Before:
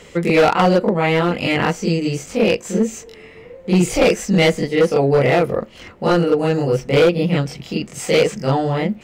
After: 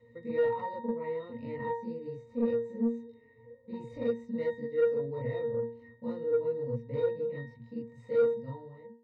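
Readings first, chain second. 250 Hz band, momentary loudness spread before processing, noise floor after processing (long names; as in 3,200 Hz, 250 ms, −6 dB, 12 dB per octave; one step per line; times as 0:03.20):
−18.0 dB, 9 LU, −59 dBFS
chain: fade-out on the ending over 0.72 s
resonances in every octave A#, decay 0.43 s
soft clipping −18.5 dBFS, distortion −18 dB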